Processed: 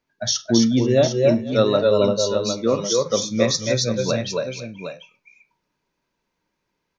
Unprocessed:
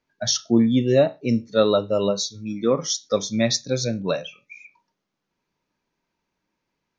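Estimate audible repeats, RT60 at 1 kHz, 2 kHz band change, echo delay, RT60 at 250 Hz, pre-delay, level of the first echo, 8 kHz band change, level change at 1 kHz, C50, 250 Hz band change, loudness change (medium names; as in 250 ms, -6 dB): 4, no reverb, +2.5 dB, 49 ms, no reverb, no reverb, -19.5 dB, no reading, +2.0 dB, no reverb, +1.0 dB, +2.0 dB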